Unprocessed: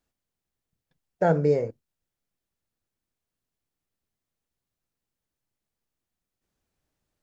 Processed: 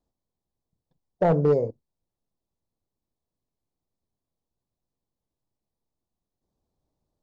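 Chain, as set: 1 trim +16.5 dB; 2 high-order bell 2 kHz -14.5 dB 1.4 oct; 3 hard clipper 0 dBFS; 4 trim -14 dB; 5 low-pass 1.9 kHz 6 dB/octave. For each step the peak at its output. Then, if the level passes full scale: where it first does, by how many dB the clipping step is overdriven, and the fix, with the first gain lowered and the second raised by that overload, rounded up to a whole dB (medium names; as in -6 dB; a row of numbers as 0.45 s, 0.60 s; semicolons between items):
+8.0 dBFS, +7.5 dBFS, 0.0 dBFS, -14.0 dBFS, -14.0 dBFS; step 1, 7.5 dB; step 1 +8.5 dB, step 4 -6 dB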